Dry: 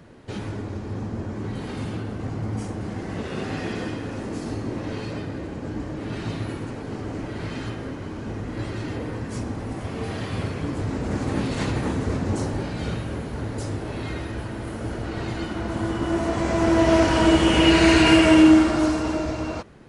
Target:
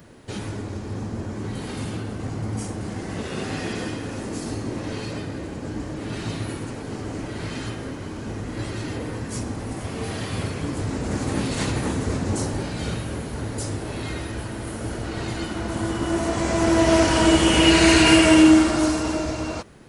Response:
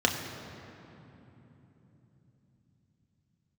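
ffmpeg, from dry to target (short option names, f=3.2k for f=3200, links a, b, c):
-af "aemphasis=mode=production:type=50kf"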